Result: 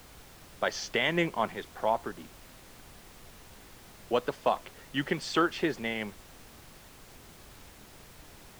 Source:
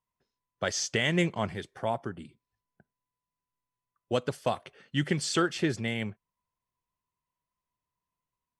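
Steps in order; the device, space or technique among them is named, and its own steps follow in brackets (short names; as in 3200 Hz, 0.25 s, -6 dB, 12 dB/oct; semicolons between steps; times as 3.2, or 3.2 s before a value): horn gramophone (BPF 240–4200 Hz; bell 950 Hz +6 dB; wow and flutter; pink noise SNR 17 dB)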